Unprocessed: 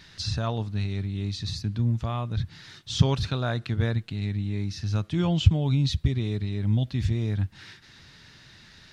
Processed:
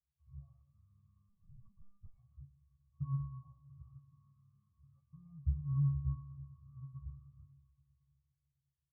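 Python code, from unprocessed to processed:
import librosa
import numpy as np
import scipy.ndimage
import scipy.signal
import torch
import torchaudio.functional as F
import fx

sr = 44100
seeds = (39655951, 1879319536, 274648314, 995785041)

p1 = fx.bit_reversed(x, sr, seeds[0], block=32)
p2 = fx.peak_eq(p1, sr, hz=690.0, db=11.0, octaves=1.9)
p3 = fx.fixed_phaser(p2, sr, hz=2900.0, stages=8)
p4 = fx.octave_resonator(p3, sr, note='C#', decay_s=0.35)
p5 = p4 + fx.echo_single(p4, sr, ms=122, db=-10.5, dry=0)
p6 = fx.rev_freeverb(p5, sr, rt60_s=4.2, hf_ratio=0.6, predelay_ms=15, drr_db=9.5)
p7 = fx.lpc_monotone(p6, sr, seeds[1], pitch_hz=200.0, order=10, at=(1.29, 2.18))
p8 = fx.fixed_phaser(p7, sr, hz=750.0, stages=4)
p9 = fx.spectral_expand(p8, sr, expansion=1.5)
y = F.gain(torch.from_numpy(p9), -3.0).numpy()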